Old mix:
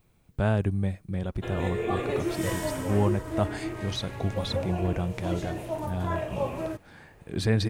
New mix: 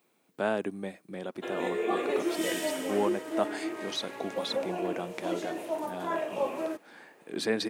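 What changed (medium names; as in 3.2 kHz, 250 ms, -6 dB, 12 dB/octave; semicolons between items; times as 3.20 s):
second sound: add resonant high-pass 2.4 kHz, resonance Q 2.8; master: add high-pass 250 Hz 24 dB/octave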